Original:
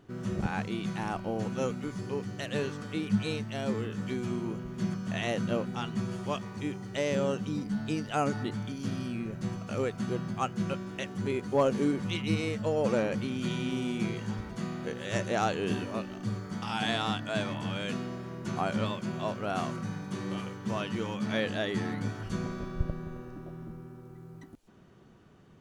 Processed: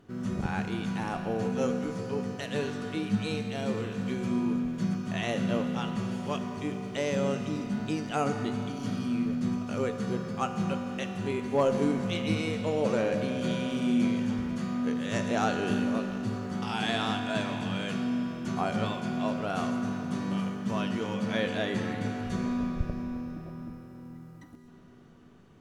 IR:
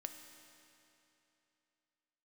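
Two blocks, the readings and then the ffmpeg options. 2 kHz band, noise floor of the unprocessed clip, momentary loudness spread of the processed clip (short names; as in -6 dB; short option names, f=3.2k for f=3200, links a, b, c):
+1.0 dB, -48 dBFS, 6 LU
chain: -filter_complex "[1:a]atrim=start_sample=2205,asetrate=34839,aresample=44100[a];[0:a][a]afir=irnorm=-1:irlink=0,volume=3dB"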